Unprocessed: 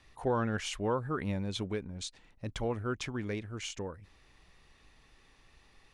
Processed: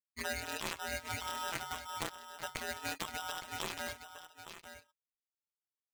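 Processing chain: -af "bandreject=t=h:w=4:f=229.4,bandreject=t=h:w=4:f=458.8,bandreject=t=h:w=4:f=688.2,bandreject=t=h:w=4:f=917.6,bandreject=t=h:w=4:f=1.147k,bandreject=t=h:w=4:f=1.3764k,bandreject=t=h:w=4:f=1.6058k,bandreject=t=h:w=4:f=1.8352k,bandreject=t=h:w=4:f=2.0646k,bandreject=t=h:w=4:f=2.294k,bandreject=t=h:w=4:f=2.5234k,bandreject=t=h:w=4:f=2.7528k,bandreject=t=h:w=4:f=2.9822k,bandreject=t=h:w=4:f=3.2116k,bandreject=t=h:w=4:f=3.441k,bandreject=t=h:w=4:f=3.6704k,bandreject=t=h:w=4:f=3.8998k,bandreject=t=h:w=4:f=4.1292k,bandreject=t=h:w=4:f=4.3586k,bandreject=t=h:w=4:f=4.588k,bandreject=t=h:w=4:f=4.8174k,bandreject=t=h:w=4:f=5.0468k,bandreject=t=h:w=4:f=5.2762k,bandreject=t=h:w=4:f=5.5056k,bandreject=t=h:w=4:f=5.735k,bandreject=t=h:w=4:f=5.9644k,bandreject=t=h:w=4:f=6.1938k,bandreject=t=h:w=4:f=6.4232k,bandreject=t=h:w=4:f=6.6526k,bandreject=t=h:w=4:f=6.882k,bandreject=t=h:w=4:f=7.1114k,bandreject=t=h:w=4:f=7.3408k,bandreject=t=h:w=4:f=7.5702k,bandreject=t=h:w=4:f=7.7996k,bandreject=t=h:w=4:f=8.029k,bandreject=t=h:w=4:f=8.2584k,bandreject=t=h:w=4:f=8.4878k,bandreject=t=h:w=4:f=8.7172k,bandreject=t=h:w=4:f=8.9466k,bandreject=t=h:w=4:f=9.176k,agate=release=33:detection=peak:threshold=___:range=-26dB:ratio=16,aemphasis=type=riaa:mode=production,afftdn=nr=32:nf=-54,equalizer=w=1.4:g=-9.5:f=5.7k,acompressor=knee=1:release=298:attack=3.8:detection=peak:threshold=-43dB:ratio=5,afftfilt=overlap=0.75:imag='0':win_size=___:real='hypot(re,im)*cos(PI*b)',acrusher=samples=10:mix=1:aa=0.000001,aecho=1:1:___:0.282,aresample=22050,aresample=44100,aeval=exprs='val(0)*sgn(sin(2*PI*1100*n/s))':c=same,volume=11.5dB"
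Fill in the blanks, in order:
-54dB, 1024, 864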